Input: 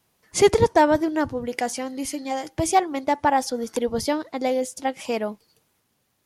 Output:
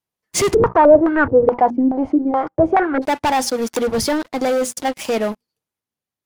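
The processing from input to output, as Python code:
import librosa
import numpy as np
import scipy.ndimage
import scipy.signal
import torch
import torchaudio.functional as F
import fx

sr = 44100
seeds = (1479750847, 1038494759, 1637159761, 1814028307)

y = fx.hum_notches(x, sr, base_hz=60, count=4)
y = fx.leveller(y, sr, passes=5)
y = fx.filter_held_lowpass(y, sr, hz=4.7, low_hz=290.0, high_hz=1500.0, at=(0.53, 3.01), fade=0.02)
y = F.gain(torch.from_numpy(y), -9.0).numpy()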